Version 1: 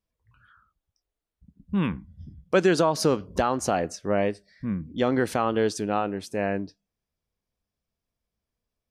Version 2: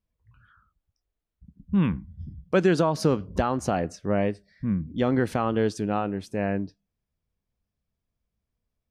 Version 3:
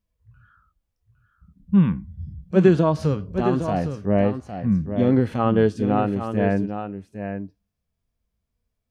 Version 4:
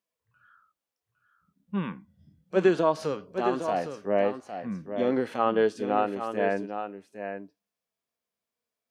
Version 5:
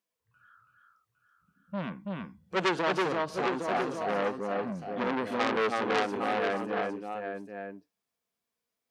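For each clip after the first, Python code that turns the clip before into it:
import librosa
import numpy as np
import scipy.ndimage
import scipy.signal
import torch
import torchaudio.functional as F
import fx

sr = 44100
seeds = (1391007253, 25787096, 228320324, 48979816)

y1 = fx.bass_treble(x, sr, bass_db=7, treble_db=-5)
y1 = y1 * librosa.db_to_amplitude(-2.0)
y2 = fx.hpss(y1, sr, part='percussive', gain_db=-18)
y2 = y2 + 10.0 ** (-8.5 / 20.0) * np.pad(y2, (int(809 * sr / 1000.0), 0))[:len(y2)]
y2 = y2 * librosa.db_to_amplitude(6.5)
y3 = scipy.signal.sosfilt(scipy.signal.butter(2, 410.0, 'highpass', fs=sr, output='sos'), y2)
y3 = y3 * librosa.db_to_amplitude(-1.0)
y4 = fx.notch(y3, sr, hz=610.0, q=12.0)
y4 = y4 + 10.0 ** (-3.0 / 20.0) * np.pad(y4, (int(329 * sr / 1000.0), 0))[:len(y4)]
y4 = fx.transformer_sat(y4, sr, knee_hz=2900.0)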